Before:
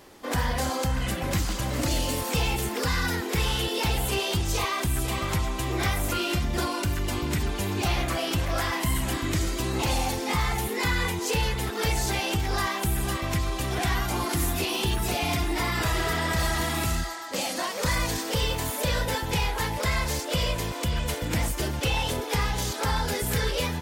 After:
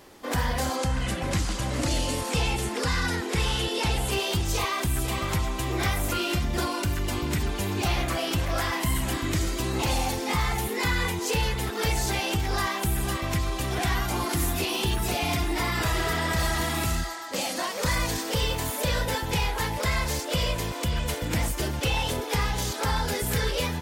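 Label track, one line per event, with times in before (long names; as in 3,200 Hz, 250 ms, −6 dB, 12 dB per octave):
0.760000	4.100000	low-pass filter 11,000 Hz 24 dB per octave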